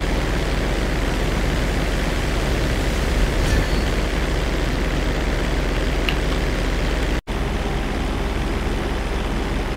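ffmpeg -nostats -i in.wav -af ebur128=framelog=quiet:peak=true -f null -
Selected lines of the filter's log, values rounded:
Integrated loudness:
  I:         -22.5 LUFS
  Threshold: -32.5 LUFS
Loudness range:
  LRA:         1.9 LU
  Threshold: -42.3 LUFS
  LRA low:   -23.5 LUFS
  LRA high:  -21.6 LUFS
True peak:
  Peak:       -3.6 dBFS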